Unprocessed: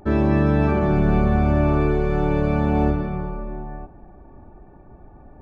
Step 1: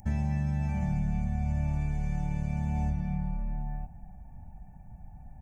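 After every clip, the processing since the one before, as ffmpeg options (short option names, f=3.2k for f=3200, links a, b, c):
-af "firequalizer=gain_entry='entry(180,0);entry(360,-30);entry(790,-4);entry(1200,-25);entry(1900,-3);entry(3900,-12);entry(6000,10)':delay=0.05:min_phase=1,acompressor=threshold=-26dB:ratio=6"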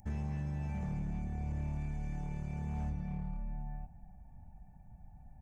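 -af "asoftclip=type=hard:threshold=-25dB,volume=-7dB"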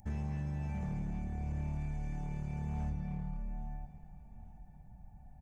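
-af "aecho=1:1:836|1672|2508:0.133|0.056|0.0235"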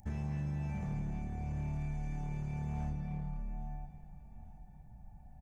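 -filter_complex "[0:a]asplit=2[a][b];[b]adelay=35,volume=-10.5dB[c];[a][c]amix=inputs=2:normalize=0"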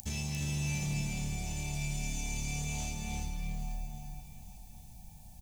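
-filter_complex "[0:a]aexciter=amount=10.7:drive=7.7:freq=2.6k,asplit=2[a][b];[b]aecho=0:1:349:0.668[c];[a][c]amix=inputs=2:normalize=0"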